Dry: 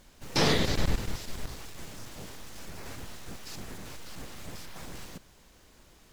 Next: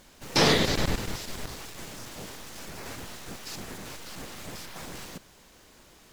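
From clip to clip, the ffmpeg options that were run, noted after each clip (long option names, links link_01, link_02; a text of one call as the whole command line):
ffmpeg -i in.wav -af "lowshelf=frequency=110:gain=-8.5,volume=4.5dB" out.wav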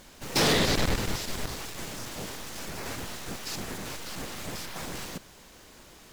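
ffmpeg -i in.wav -af "asoftclip=type=hard:threshold=-24dB,volume=3.5dB" out.wav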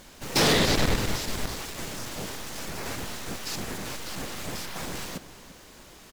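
ffmpeg -i in.wav -filter_complex "[0:a]asplit=2[link_01][link_02];[link_02]adelay=344,volume=-14dB,highshelf=frequency=4000:gain=-7.74[link_03];[link_01][link_03]amix=inputs=2:normalize=0,volume=2dB" out.wav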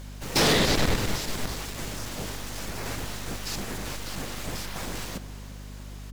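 ffmpeg -i in.wav -af "aeval=exprs='val(0)+0.0112*(sin(2*PI*50*n/s)+sin(2*PI*2*50*n/s)/2+sin(2*PI*3*50*n/s)/3+sin(2*PI*4*50*n/s)/4+sin(2*PI*5*50*n/s)/5)':channel_layout=same" out.wav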